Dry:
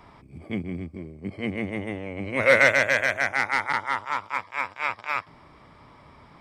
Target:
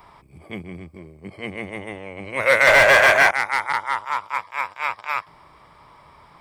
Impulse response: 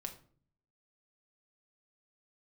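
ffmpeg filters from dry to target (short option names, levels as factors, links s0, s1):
-filter_complex "[0:a]crystalizer=i=1.5:c=0,asettb=1/sr,asplit=3[s0][s1][s2];[s0]atrim=end=2.674[s3];[s1]atrim=start=2.67:end=3.31,asetpts=PTS-STARTPTS,afade=t=in:d=0.004:c=qsin,afade=t=out:st=0.636:d=0.004:c=qsin,asplit=2[s4][s5];[s5]highpass=f=720:p=1,volume=28.2,asoftclip=type=tanh:threshold=0.596[s6];[s4][s6]amix=inputs=2:normalize=0,lowpass=f=2700:p=1,volume=0.501[s7];[s2]atrim=start=3.306[s8];[s3][s7]acrossfade=d=0.004:c1=hsin:c2=qsin[s9];[s9][s8]acrossfade=d=0.004:c1=qsin:c2=hsin,equalizer=f=100:t=o:w=0.67:g=-5,equalizer=f=250:t=o:w=0.67:g=-8,equalizer=f=1000:t=o:w=0.67:g=5,equalizer=f=6300:t=o:w=0.67:g=-4"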